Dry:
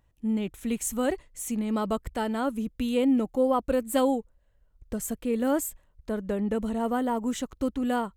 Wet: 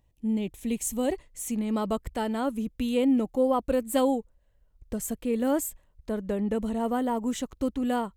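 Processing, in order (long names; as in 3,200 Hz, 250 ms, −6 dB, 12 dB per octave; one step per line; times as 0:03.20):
parametric band 1,400 Hz −14 dB 0.54 octaves, from 0:01.13 −3.5 dB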